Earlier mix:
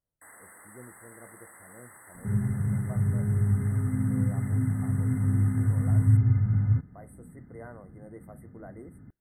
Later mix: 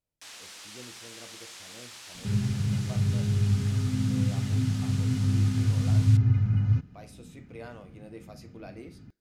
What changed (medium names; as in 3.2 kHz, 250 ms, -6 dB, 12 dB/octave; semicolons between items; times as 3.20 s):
speech: send +7.0 dB; master: remove brick-wall FIR band-stop 2.1–7.8 kHz